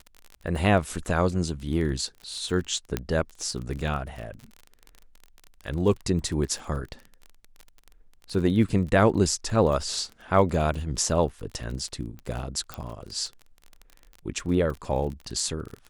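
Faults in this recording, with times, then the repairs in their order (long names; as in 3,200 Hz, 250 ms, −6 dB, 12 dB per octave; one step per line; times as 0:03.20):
surface crackle 30 per second −33 dBFS
0:02.97: click −11 dBFS
0:12.74: click −17 dBFS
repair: click removal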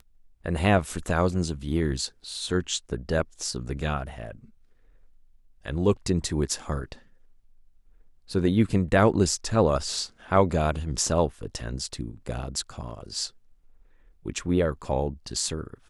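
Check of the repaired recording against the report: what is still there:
none of them is left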